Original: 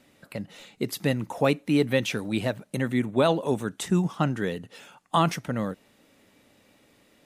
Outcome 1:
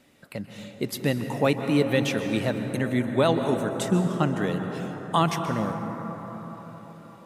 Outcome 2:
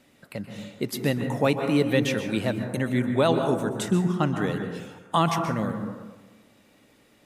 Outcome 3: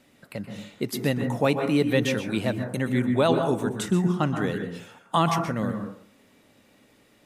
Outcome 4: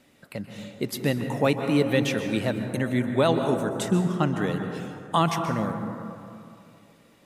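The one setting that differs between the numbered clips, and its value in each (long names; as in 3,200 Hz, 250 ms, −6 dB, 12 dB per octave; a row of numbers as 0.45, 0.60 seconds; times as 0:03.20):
dense smooth reverb, RT60: 5.1, 1.2, 0.53, 2.5 seconds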